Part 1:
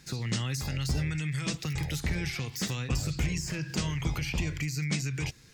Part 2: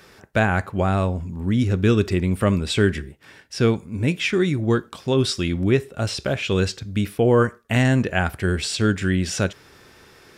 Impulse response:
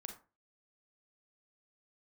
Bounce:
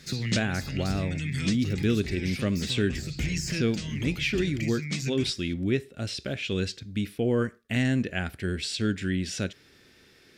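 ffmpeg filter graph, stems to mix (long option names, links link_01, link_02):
-filter_complex "[0:a]volume=1.5dB[link_01];[1:a]volume=-9.5dB,asplit=2[link_02][link_03];[link_03]apad=whole_len=244087[link_04];[link_01][link_04]sidechaincompress=threshold=-31dB:ratio=10:attack=12:release=674[link_05];[link_05][link_02]amix=inputs=2:normalize=0,equalizer=frequency=250:width_type=o:width=1:gain=5,equalizer=frequency=1000:width_type=o:width=1:gain=-9,equalizer=frequency=2000:width_type=o:width=1:gain=4,equalizer=frequency=4000:width_type=o:width=1:gain=5"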